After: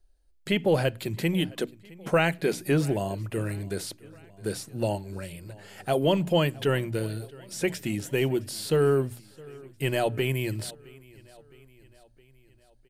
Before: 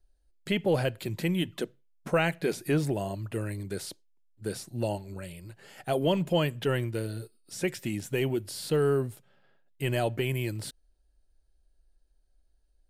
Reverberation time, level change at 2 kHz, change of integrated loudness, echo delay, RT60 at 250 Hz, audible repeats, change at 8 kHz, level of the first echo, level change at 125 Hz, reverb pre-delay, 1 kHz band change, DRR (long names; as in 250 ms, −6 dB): no reverb audible, +3.0 dB, +2.5 dB, 664 ms, no reverb audible, 3, +3.0 dB, −23.0 dB, +2.0 dB, no reverb audible, +3.0 dB, no reverb audible